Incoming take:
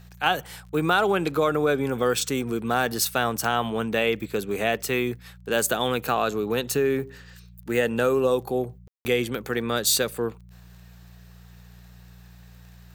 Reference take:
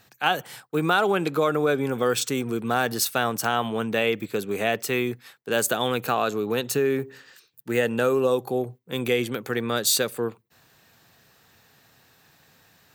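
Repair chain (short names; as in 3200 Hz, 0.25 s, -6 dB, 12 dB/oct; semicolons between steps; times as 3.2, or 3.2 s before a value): de-click; de-hum 59.3 Hz, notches 3; room tone fill 8.88–9.05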